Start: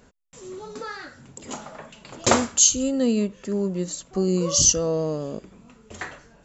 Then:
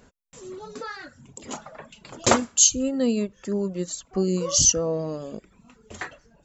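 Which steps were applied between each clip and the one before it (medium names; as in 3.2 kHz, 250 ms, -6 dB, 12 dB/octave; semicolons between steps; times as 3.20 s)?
reverb removal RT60 0.73 s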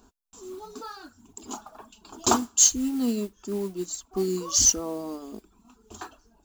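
static phaser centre 540 Hz, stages 6; modulation noise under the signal 21 dB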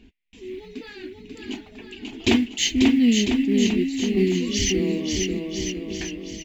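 FFT filter 300 Hz 0 dB, 1.3 kHz -26 dB, 2 kHz +12 dB, 2.8 kHz +7 dB, 4.4 kHz -9 dB, 7.5 kHz -23 dB; on a send: bouncing-ball echo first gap 540 ms, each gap 0.85×, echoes 5; on the sum: trim +8.5 dB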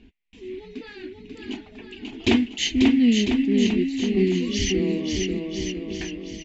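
distance through air 80 m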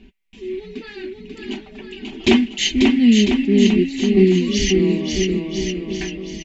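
comb 5.2 ms, depth 58%; trim +4 dB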